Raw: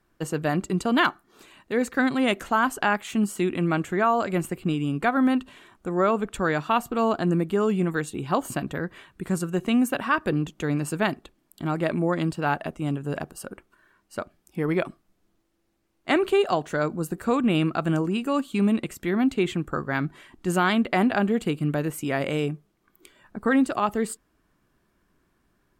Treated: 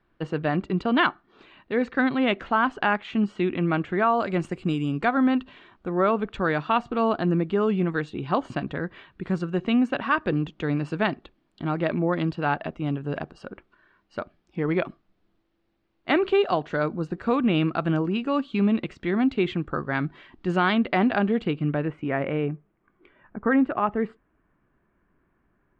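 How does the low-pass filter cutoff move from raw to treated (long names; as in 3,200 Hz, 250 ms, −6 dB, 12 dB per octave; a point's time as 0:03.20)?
low-pass filter 24 dB per octave
0:03.94 3,800 Hz
0:04.75 7,400 Hz
0:05.32 4,300 Hz
0:21.36 4,300 Hz
0:22.07 2,300 Hz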